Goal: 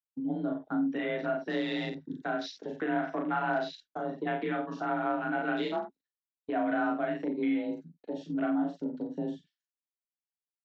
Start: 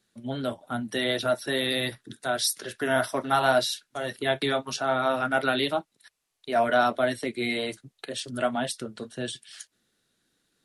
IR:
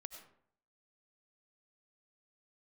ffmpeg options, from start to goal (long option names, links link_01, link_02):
-filter_complex "[0:a]highshelf=frequency=4100:gain=-9,afwtdn=0.02,aresample=16000,aresample=44100,asplit=2[link_01][link_02];[link_02]aecho=0:1:37.9|87.46:0.794|0.282[link_03];[link_01][link_03]amix=inputs=2:normalize=0,acrossover=split=4400[link_04][link_05];[link_05]acompressor=threshold=-55dB:ratio=4:attack=1:release=60[link_06];[link_04][link_06]amix=inputs=2:normalize=0,afreqshift=33,equalizer=frequency=270:width_type=o:width=0.3:gain=10.5,agate=range=-33dB:threshold=-39dB:ratio=3:detection=peak,acompressor=threshold=-35dB:ratio=2"